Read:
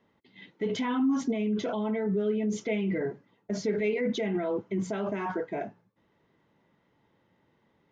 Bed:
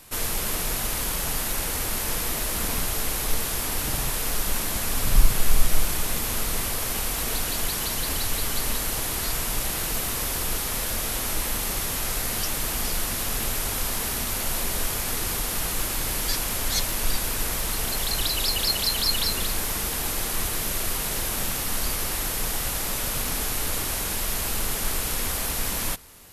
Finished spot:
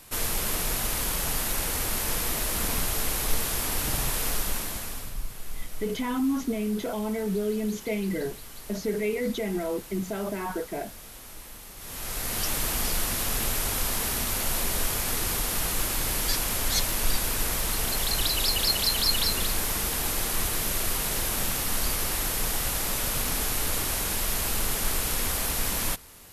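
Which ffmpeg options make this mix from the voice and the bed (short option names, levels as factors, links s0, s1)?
-filter_complex "[0:a]adelay=5200,volume=1[s0];[1:a]volume=5.96,afade=t=out:st=4.26:d=0.89:silence=0.158489,afade=t=in:st=11.77:d=0.74:silence=0.149624[s1];[s0][s1]amix=inputs=2:normalize=0"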